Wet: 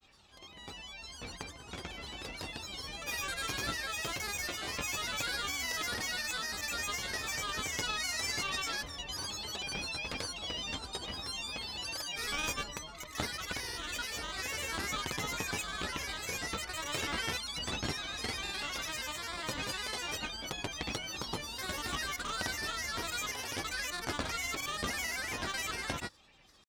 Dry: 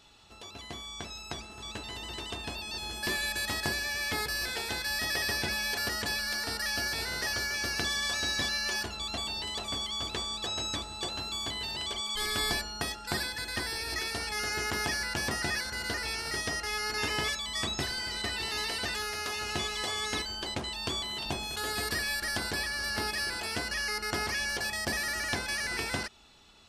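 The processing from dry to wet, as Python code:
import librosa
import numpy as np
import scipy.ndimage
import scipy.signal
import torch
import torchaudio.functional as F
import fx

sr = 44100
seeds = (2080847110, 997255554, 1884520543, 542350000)

y = fx.cheby_harmonics(x, sr, harmonics=(4,), levels_db=(-16,), full_scale_db=-15.0)
y = fx.granulator(y, sr, seeds[0], grain_ms=100.0, per_s=20.0, spray_ms=100.0, spread_st=7)
y = F.gain(torch.from_numpy(y), -3.0).numpy()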